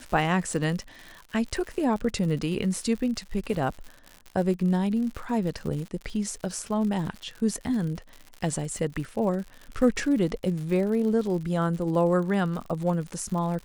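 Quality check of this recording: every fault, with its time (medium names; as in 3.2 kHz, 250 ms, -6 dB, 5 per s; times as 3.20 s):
crackle 100 per s -34 dBFS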